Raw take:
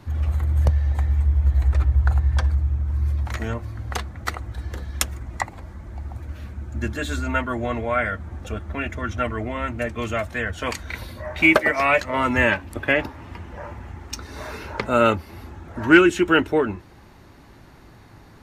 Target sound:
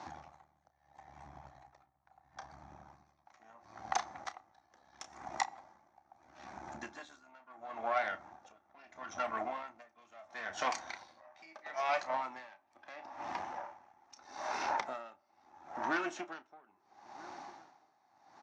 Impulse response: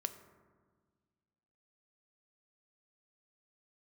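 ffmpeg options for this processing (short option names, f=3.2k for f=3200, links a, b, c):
-filter_complex "[0:a]equalizer=f=800:t=o:w=0.52:g=9,acompressor=threshold=-31dB:ratio=6,aeval=exprs='(tanh(22.4*val(0)+0.8)-tanh(0.8))/22.4':c=same,highpass=370,equalizer=f=450:t=q:w=4:g=-10,equalizer=f=760:t=q:w=4:g=6,equalizer=f=1.1k:t=q:w=4:g=3,equalizer=f=2.9k:t=q:w=4:g=-4,equalizer=f=5.9k:t=q:w=4:g=9,lowpass=f=6.5k:w=0.5412,lowpass=f=6.5k:w=1.3066,asplit=2[a][b];[b]adelay=1283,volume=-19dB,highshelf=f=4k:g=-28.9[c];[a][c]amix=inputs=2:normalize=0,asplit=2[d][e];[1:a]atrim=start_sample=2205,adelay=31[f];[e][f]afir=irnorm=-1:irlink=0,volume=-10.5dB[g];[d][g]amix=inputs=2:normalize=0,aeval=exprs='val(0)*pow(10,-26*(0.5-0.5*cos(2*PI*0.75*n/s))/20)':c=same,volume=4.5dB"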